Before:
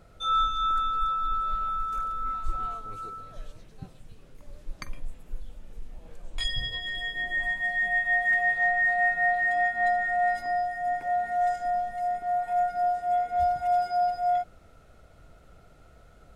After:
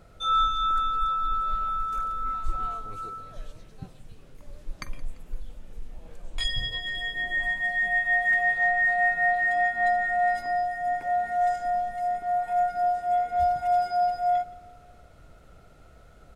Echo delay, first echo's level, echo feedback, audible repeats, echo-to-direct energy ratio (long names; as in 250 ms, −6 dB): 171 ms, −20.5 dB, 50%, 3, −19.5 dB